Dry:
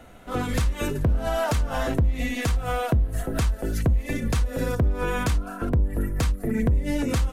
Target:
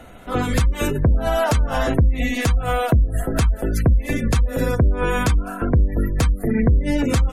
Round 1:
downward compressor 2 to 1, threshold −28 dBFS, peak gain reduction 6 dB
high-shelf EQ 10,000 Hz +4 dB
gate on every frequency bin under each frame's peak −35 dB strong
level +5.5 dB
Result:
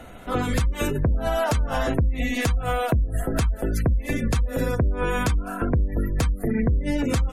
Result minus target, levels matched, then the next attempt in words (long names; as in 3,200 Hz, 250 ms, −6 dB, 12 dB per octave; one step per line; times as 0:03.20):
downward compressor: peak gain reduction +6 dB
high-shelf EQ 10,000 Hz +4 dB
gate on every frequency bin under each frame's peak −35 dB strong
level +5.5 dB